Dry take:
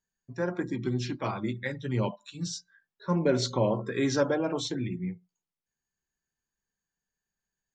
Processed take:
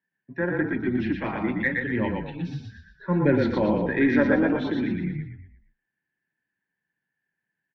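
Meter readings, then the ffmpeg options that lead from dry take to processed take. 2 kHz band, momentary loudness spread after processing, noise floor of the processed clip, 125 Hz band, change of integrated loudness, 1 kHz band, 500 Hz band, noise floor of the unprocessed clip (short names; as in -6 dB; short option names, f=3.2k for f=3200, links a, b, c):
+11.0 dB, 13 LU, -85 dBFS, +2.5 dB, +5.5 dB, +3.0 dB, +3.5 dB, under -85 dBFS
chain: -filter_complex "[0:a]highpass=f=120:w=0.5412,highpass=f=120:w=1.3066,equalizer=f=120:t=q:w=4:g=-7,equalizer=f=300:t=q:w=4:g=5,equalizer=f=440:t=q:w=4:g=-4,equalizer=f=660:t=q:w=4:g=-5,equalizer=f=1.2k:t=q:w=4:g=-9,equalizer=f=1.8k:t=q:w=4:g=10,lowpass=f=2.7k:w=0.5412,lowpass=f=2.7k:w=1.3066,aeval=exprs='0.2*(cos(1*acos(clip(val(0)/0.2,-1,1)))-cos(1*PI/2))+0.00316*(cos(4*acos(clip(val(0)/0.2,-1,1)))-cos(4*PI/2))':c=same,asplit=6[a][b][c][d][e][f];[b]adelay=118,afreqshift=-31,volume=-3dB[g];[c]adelay=236,afreqshift=-62,volume=-10.5dB[h];[d]adelay=354,afreqshift=-93,volume=-18.1dB[i];[e]adelay=472,afreqshift=-124,volume=-25.6dB[j];[f]adelay=590,afreqshift=-155,volume=-33.1dB[k];[a][g][h][i][j][k]amix=inputs=6:normalize=0,volume=4dB"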